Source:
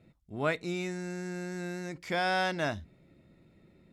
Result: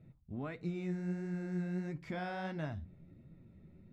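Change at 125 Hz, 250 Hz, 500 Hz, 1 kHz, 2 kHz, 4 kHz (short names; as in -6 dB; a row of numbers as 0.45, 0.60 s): 0.0, -1.5, -9.5, -12.0, -13.5, -17.5 dB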